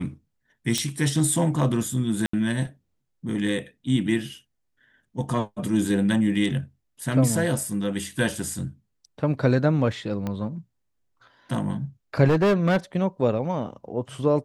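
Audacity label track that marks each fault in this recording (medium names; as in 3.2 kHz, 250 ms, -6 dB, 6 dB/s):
0.780000	0.780000	pop -10 dBFS
2.260000	2.330000	dropout 74 ms
10.270000	10.270000	pop -17 dBFS
12.270000	12.770000	clipped -16.5 dBFS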